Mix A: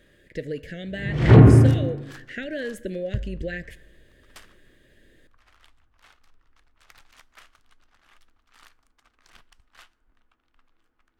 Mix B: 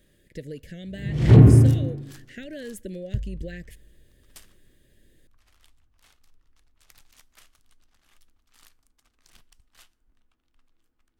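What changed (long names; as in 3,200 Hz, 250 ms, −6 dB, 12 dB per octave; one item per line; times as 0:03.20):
speech: send −11.5 dB
master: add drawn EQ curve 170 Hz 0 dB, 1,400 Hz −10 dB, 12,000 Hz +7 dB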